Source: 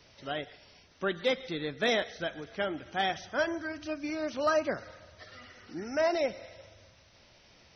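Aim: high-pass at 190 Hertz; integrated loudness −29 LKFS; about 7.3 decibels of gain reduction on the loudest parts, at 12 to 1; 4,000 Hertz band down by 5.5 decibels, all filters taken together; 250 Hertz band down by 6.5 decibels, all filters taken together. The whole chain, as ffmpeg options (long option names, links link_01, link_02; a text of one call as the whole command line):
ffmpeg -i in.wav -af "highpass=190,equalizer=frequency=250:width_type=o:gain=-8,equalizer=frequency=4000:width_type=o:gain=-7,acompressor=threshold=-31dB:ratio=12,volume=9.5dB" out.wav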